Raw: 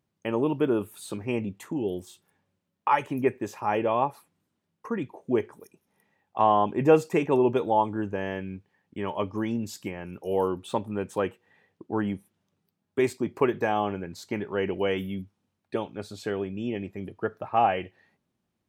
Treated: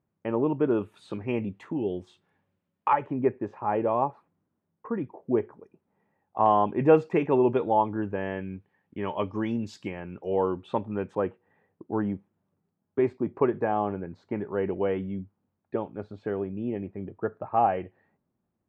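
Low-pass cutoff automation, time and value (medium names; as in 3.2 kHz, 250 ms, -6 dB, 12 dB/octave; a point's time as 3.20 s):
1.6 kHz
from 0.71 s 2.8 kHz
from 2.93 s 1.3 kHz
from 6.46 s 2.4 kHz
from 9.03 s 4.1 kHz
from 10.00 s 2.3 kHz
from 11.15 s 1.3 kHz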